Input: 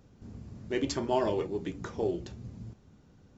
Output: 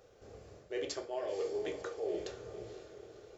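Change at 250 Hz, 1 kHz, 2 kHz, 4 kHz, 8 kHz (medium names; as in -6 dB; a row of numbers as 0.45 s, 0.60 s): -12.0 dB, -11.0 dB, -5.0 dB, -4.5 dB, no reading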